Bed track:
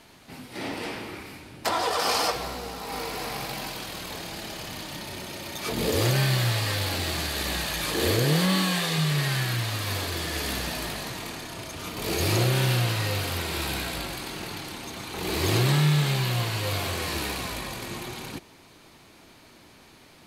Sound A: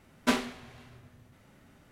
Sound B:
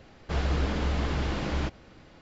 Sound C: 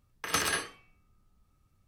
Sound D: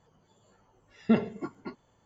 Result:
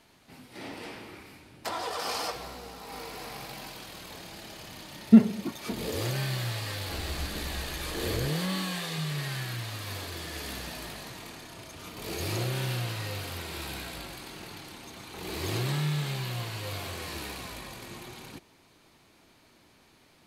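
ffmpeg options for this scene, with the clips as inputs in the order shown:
ffmpeg -i bed.wav -i cue0.wav -i cue1.wav -i cue2.wav -i cue3.wav -filter_complex "[0:a]volume=-8dB[link_01];[4:a]equalizer=frequency=210:width_type=o:width=0.77:gain=14[link_02];[2:a]aphaser=in_gain=1:out_gain=1:delay=3:decay=0.5:speed=1.3:type=triangular[link_03];[link_02]atrim=end=2.05,asetpts=PTS-STARTPTS,volume=-4dB,afade=type=in:duration=0.004:curve=hsin,afade=type=out:start_time=2.046:duration=0.004:curve=hsin,adelay=4030[link_04];[link_03]atrim=end=2.21,asetpts=PTS-STARTPTS,volume=-13dB,afade=type=in:duration=0.004:curve=hsin,afade=type=out:start_time=2.206:duration=0.004:curve=hsin,adelay=6600[link_05];[link_01][link_04][link_05]amix=inputs=3:normalize=0" out.wav

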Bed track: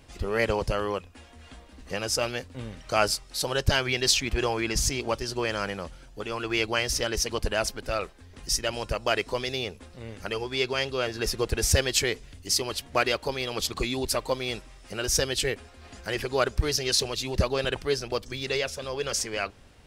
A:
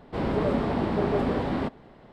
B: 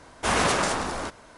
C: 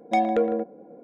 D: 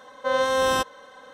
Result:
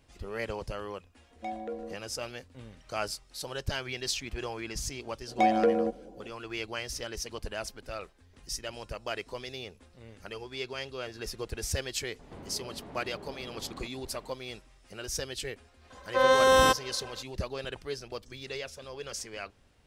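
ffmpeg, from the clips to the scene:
ffmpeg -i bed.wav -i cue0.wav -i cue1.wav -i cue2.wav -i cue3.wav -filter_complex "[3:a]asplit=2[link_01][link_02];[0:a]volume=-10dB[link_03];[1:a]acompressor=threshold=-40dB:ratio=6:attack=3.2:release=140:knee=1:detection=peak[link_04];[4:a]dynaudnorm=framelen=170:gausssize=3:maxgain=6.5dB[link_05];[link_01]atrim=end=1.03,asetpts=PTS-STARTPTS,volume=-15.5dB,afade=type=in:duration=0.004:curve=hsin,afade=type=out:start_time=1.026:duration=0.004:curve=hsin,adelay=1310[link_06];[link_02]atrim=end=1.03,asetpts=PTS-STARTPTS,volume=-2dB,afade=type=in:duration=0.004:curve=hsin,afade=type=out:start_time=1.026:duration=0.004:curve=hsin,adelay=5270[link_07];[link_04]atrim=end=2.12,asetpts=PTS-STARTPTS,volume=-4dB,afade=type=in:duration=0.004:curve=hsin,afade=type=out:start_time=2.116:duration=0.004:curve=hsin,adelay=12190[link_08];[link_05]atrim=end=1.33,asetpts=PTS-STARTPTS,volume=-5dB,afade=type=in:duration=0.004:curve=hsin,afade=type=out:start_time=1.326:duration=0.004:curve=hsin,adelay=15900[link_09];[link_03][link_06][link_07][link_08][link_09]amix=inputs=5:normalize=0" out.wav

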